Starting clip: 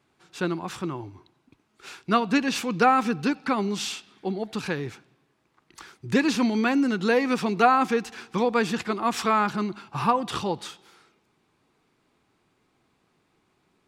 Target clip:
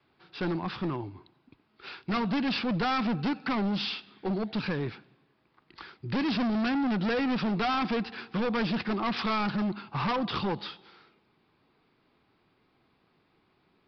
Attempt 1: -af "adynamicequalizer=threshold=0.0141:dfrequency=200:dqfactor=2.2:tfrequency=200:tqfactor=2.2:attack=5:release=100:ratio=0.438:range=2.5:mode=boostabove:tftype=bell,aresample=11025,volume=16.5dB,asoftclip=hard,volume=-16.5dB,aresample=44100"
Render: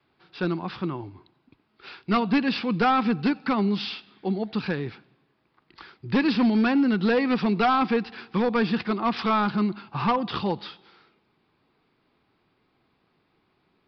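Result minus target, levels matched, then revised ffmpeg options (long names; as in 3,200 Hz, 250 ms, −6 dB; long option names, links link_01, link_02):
gain into a clipping stage and back: distortion −8 dB
-af "adynamicequalizer=threshold=0.0141:dfrequency=200:dqfactor=2.2:tfrequency=200:tqfactor=2.2:attack=5:release=100:ratio=0.438:range=2.5:mode=boostabove:tftype=bell,aresample=11025,volume=26dB,asoftclip=hard,volume=-26dB,aresample=44100"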